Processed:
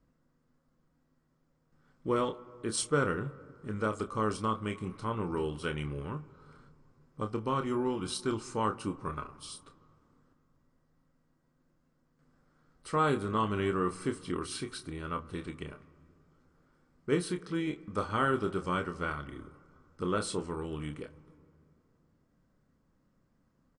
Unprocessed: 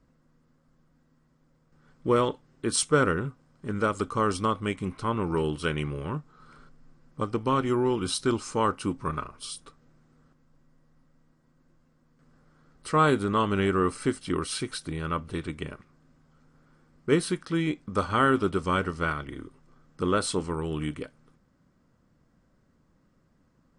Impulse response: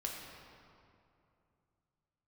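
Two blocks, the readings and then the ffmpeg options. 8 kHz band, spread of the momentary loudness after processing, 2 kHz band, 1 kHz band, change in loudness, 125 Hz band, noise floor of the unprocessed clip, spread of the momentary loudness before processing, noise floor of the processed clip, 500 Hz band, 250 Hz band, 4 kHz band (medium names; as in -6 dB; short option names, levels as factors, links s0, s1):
-7.0 dB, 14 LU, -6.5 dB, -6.0 dB, -6.0 dB, -6.0 dB, -66 dBFS, 14 LU, -73 dBFS, -6.0 dB, -6.0 dB, -7.0 dB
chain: -filter_complex "[0:a]asplit=2[s0][s1];[s1]adelay=28,volume=0.398[s2];[s0][s2]amix=inputs=2:normalize=0,asplit=2[s3][s4];[1:a]atrim=start_sample=2205,lowpass=2100[s5];[s4][s5]afir=irnorm=-1:irlink=0,volume=0.188[s6];[s3][s6]amix=inputs=2:normalize=0,volume=0.422"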